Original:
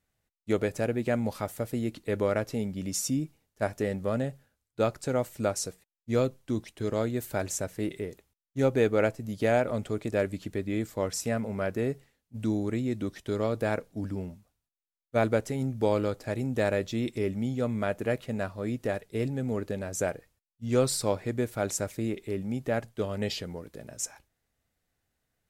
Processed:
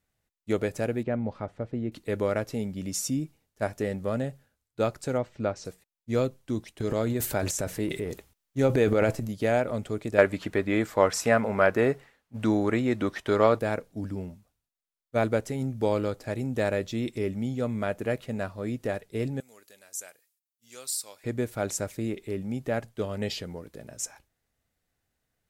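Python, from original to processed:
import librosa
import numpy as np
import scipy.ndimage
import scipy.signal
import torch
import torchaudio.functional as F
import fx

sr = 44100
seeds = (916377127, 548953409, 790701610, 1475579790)

y = fx.spacing_loss(x, sr, db_at_10k=34, at=(1.03, 1.92))
y = fx.air_absorb(y, sr, metres=180.0, at=(5.17, 5.64), fade=0.02)
y = fx.transient(y, sr, attack_db=3, sustain_db=11, at=(6.8, 9.33))
y = fx.peak_eq(y, sr, hz=1200.0, db=13.5, octaves=3.0, at=(10.18, 13.59))
y = fx.differentiator(y, sr, at=(19.4, 21.24))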